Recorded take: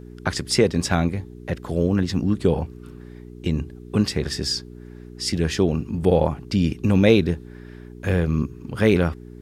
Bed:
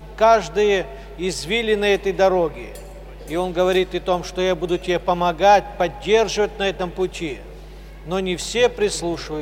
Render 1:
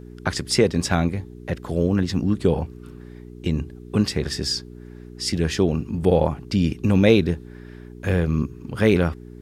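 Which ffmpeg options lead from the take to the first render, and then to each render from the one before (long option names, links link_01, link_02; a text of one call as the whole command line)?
ffmpeg -i in.wav -af anull out.wav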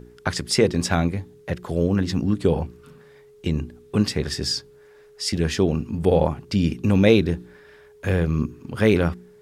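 ffmpeg -i in.wav -af "bandreject=frequency=60:width_type=h:width=4,bandreject=frequency=120:width_type=h:width=4,bandreject=frequency=180:width_type=h:width=4,bandreject=frequency=240:width_type=h:width=4,bandreject=frequency=300:width_type=h:width=4,bandreject=frequency=360:width_type=h:width=4" out.wav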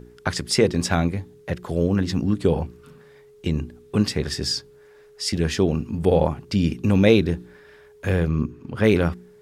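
ffmpeg -i in.wav -filter_complex "[0:a]asettb=1/sr,asplit=3[link_01][link_02][link_03];[link_01]atrim=end=8.284[link_04];[link_02]atrim=start=8.28:end=8.84,asetpts=PTS-STARTPTS,afade=type=in:duration=0.004:curve=qsin,afade=type=out:start_time=0.556:duration=0.004:curve=qsin,highshelf=frequency=4900:gain=-11[link_05];[link_03]atrim=start=8.836[link_06];[link_04][link_05]acrossfade=duration=0.004:curve1=hsin:curve2=qsin[link_07];[link_07][link_06]acrossfade=duration=0.004:curve1=qsin:curve2=hsin" out.wav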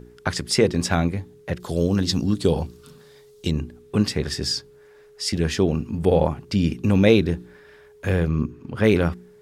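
ffmpeg -i in.wav -filter_complex "[0:a]asettb=1/sr,asplit=3[link_01][link_02][link_03];[link_01]atrim=end=1.604[link_04];[link_02]atrim=start=1.6:end=3.51,asetpts=PTS-STARTPTS,afade=type=in:duration=0.004:curve=qsin,afade=type=out:start_time=1.906:duration=0.004:curve=qsin,highshelf=frequency=3000:width_type=q:width=1.5:gain=7.5[link_05];[link_03]atrim=start=3.506[link_06];[link_04][link_05]acrossfade=duration=0.004:curve1=hsin:curve2=qsin[link_07];[link_07][link_06]acrossfade=duration=0.004:curve1=qsin:curve2=hsin" out.wav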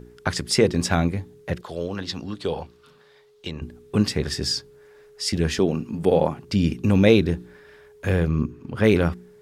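ffmpeg -i in.wav -filter_complex "[0:a]asettb=1/sr,asplit=3[link_01][link_02][link_03];[link_01]atrim=end=1.614[link_04];[link_02]atrim=start=1.61:end=3.62,asetpts=PTS-STARTPTS,afade=type=in:duration=0.004:curve=qsin,afade=type=out:start_time=2.006:duration=0.004:curve=qsin,acrossover=split=500 4000:gain=0.251 1 0.2[link_05][link_06][link_07];[link_05][link_06][link_07]amix=inputs=3:normalize=0[link_08];[link_03]atrim=start=3.616[link_09];[link_04][link_08]acrossfade=duration=0.004:curve1=hsin:curve2=qsin[link_10];[link_10][link_09]acrossfade=duration=0.004:curve1=qsin:curve2=hsin,asettb=1/sr,asplit=3[link_11][link_12][link_13];[link_11]atrim=end=5.594[link_14];[link_12]atrim=start=5.59:end=6.43,asetpts=PTS-STARTPTS,afade=type=in:duration=0.004:curve=qsin,afade=type=out:start_time=0.836:duration=0.004:curve=qsin,highpass=150[link_15];[link_13]atrim=start=6.426[link_16];[link_14][link_15]acrossfade=duration=0.004:curve1=hsin:curve2=qsin[link_17];[link_17][link_16]acrossfade=duration=0.004:curve1=qsin:curve2=hsin" out.wav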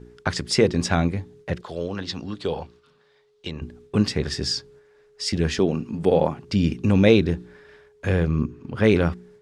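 ffmpeg -i in.wav -af "lowpass=7600,agate=range=-6dB:threshold=-49dB:ratio=16:detection=peak" out.wav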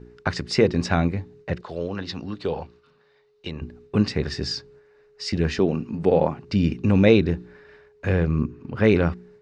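ffmpeg -i in.wav -af "lowpass=4800,bandreject=frequency=3300:width=8.4" out.wav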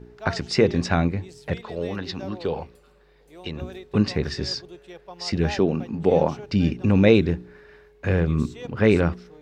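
ffmpeg -i in.wav -i bed.wav -filter_complex "[1:a]volume=-22.5dB[link_01];[0:a][link_01]amix=inputs=2:normalize=0" out.wav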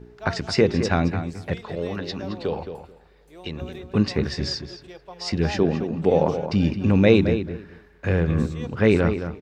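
ffmpeg -i in.wav -filter_complex "[0:a]asplit=2[link_01][link_02];[link_02]adelay=218,lowpass=frequency=3200:poles=1,volume=-9dB,asplit=2[link_03][link_04];[link_04]adelay=218,lowpass=frequency=3200:poles=1,volume=0.17,asplit=2[link_05][link_06];[link_06]adelay=218,lowpass=frequency=3200:poles=1,volume=0.17[link_07];[link_01][link_03][link_05][link_07]amix=inputs=4:normalize=0" out.wav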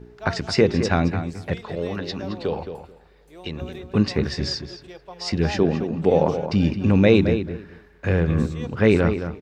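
ffmpeg -i in.wav -af "volume=1dB,alimiter=limit=-3dB:level=0:latency=1" out.wav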